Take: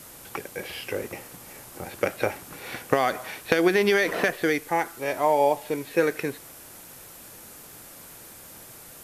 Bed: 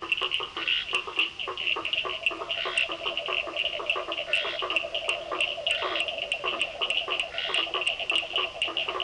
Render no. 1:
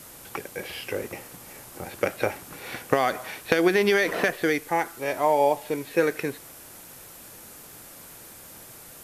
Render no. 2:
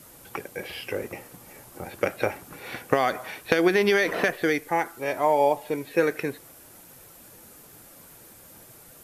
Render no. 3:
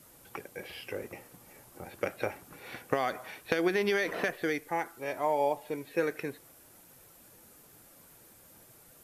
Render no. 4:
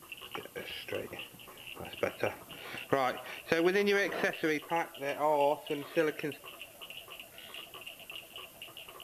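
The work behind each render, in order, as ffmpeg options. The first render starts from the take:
-af anull
-af "afftdn=nr=6:nf=-46"
-af "volume=-7.5dB"
-filter_complex "[1:a]volume=-19.5dB[a];[0:a][a]amix=inputs=2:normalize=0"

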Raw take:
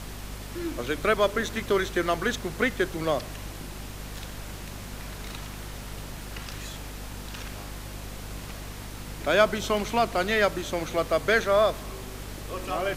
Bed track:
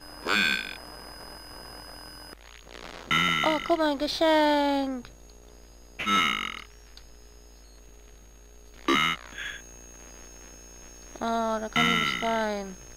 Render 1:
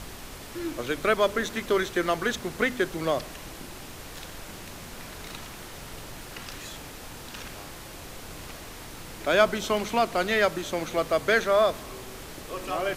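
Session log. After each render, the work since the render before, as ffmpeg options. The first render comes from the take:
-af "bandreject=f=50:t=h:w=4,bandreject=f=100:t=h:w=4,bandreject=f=150:t=h:w=4,bandreject=f=200:t=h:w=4,bandreject=f=250:t=h:w=4"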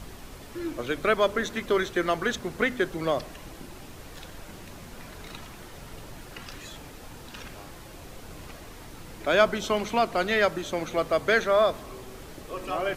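-af "afftdn=nr=6:nf=-42"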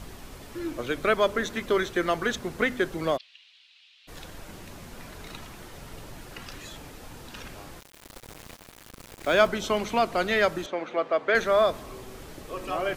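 -filter_complex "[0:a]asplit=3[a][b][c];[a]afade=t=out:st=3.16:d=0.02[d];[b]asuperpass=centerf=3300:order=4:qfactor=1.9,afade=t=in:st=3.16:d=0.02,afade=t=out:st=4.07:d=0.02[e];[c]afade=t=in:st=4.07:d=0.02[f];[d][e][f]amix=inputs=3:normalize=0,asettb=1/sr,asplit=3[g][h][i];[g]atrim=end=7.804[j];[h]atrim=start=7.8:end=9.47,asetpts=PTS-STARTPTS,afade=t=in:d=0.004:c=qsin,afade=t=out:st=1.666:d=0.004:c=qsin,aeval=exprs='val(0)*gte(abs(val(0)),0.0133)':c=same[k];[i]atrim=start=9.466[l];[j][k]acrossfade=d=0.004:c1=hsin:c2=qsin[m];[m][l]acrossfade=d=0.004:c1=qsin:c2=hsin,asettb=1/sr,asplit=3[n][o][p];[n]atrim=end=10.664[q];[o]atrim=start=10.66:end=11.35,asetpts=PTS-STARTPTS,afade=t=in:d=0.004:c=qsin,afade=t=out:st=0.686:d=0.004:c=qsin,highpass=320,lowpass=2.7k[r];[p]atrim=start=11.346[s];[q][r]acrossfade=d=0.004:c1=hsin:c2=qsin[t];[t][s]acrossfade=d=0.004:c1=qsin:c2=hsin"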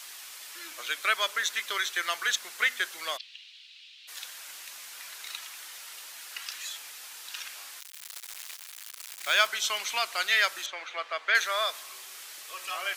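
-af "highpass=1.4k,highshelf=f=2.3k:g=9"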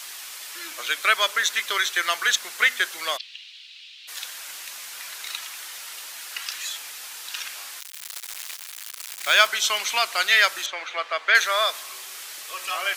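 -af "volume=6.5dB"

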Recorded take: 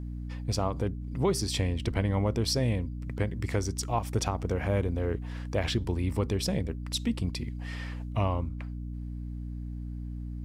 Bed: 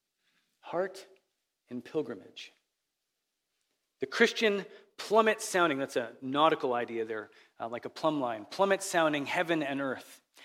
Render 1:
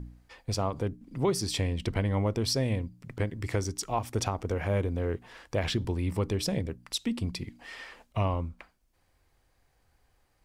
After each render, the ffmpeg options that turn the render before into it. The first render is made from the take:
-af "bandreject=f=60:t=h:w=4,bandreject=f=120:t=h:w=4,bandreject=f=180:t=h:w=4,bandreject=f=240:t=h:w=4,bandreject=f=300:t=h:w=4"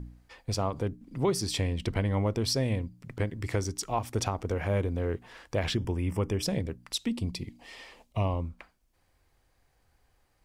-filter_complex "[0:a]asettb=1/sr,asplit=3[a][b][c];[a]atrim=end=5.754[d];[b]atrim=start=5.75:end=6.43,asetpts=PTS-STARTPTS,afade=t=in:d=0.004:c=qsin,afade=t=out:st=0.676:d=0.004:c=qsin,asuperstop=centerf=4100:order=4:qfactor=2.6[e];[c]atrim=start=6.426[f];[d][e]acrossfade=d=0.004:c1=hsin:c2=qsin[g];[g][f]acrossfade=d=0.004:c1=qsin:c2=hsin,asettb=1/sr,asplit=3[h][i][j];[h]atrim=end=7.094[k];[i]atrim=start=7.09:end=8.45,asetpts=PTS-STARTPTS,afade=t=in:d=0.004:c=qsin,afade=t=out:st=1.356:d=0.004:c=qsin,equalizer=f=1.5k:w=2.3:g=-11[l];[j]atrim=start=8.446[m];[k][l]acrossfade=d=0.004:c1=hsin:c2=qsin[n];[n][m]acrossfade=d=0.004:c1=qsin:c2=hsin"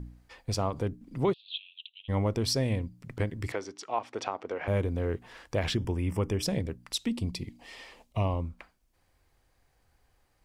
-filter_complex "[0:a]asplit=3[a][b][c];[a]afade=t=out:st=1.32:d=0.02[d];[b]asuperpass=centerf=3200:order=12:qfactor=2.4,afade=t=in:st=1.32:d=0.02,afade=t=out:st=2.08:d=0.02[e];[c]afade=t=in:st=2.08:d=0.02[f];[d][e][f]amix=inputs=3:normalize=0,asettb=1/sr,asplit=3[g][h][i];[g]atrim=end=3.524[j];[h]atrim=start=3.52:end=4.68,asetpts=PTS-STARTPTS,afade=t=in:d=0.004:c=qsin,afade=t=out:st=1.156:d=0.004:c=qsin,highpass=390,lowpass=3.6k[k];[i]atrim=start=4.676[l];[j][k]acrossfade=d=0.004:c1=hsin:c2=qsin[m];[m][l]acrossfade=d=0.004:c1=qsin:c2=hsin"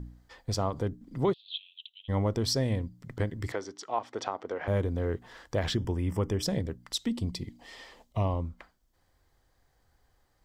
-af "superequalizer=12b=0.501:16b=0.631"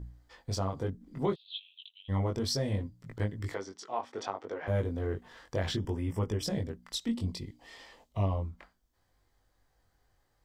-af "flanger=delay=18.5:depth=3.3:speed=0.64"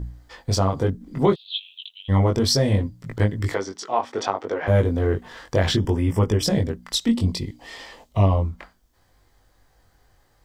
-af "volume=12dB"

